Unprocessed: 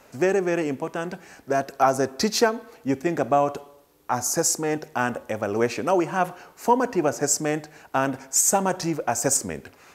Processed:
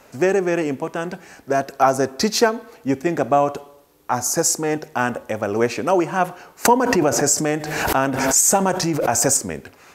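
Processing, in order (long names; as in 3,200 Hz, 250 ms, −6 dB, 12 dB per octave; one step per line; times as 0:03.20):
0:06.65–0:09.38: background raised ahead of every attack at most 37 dB per second
level +3.5 dB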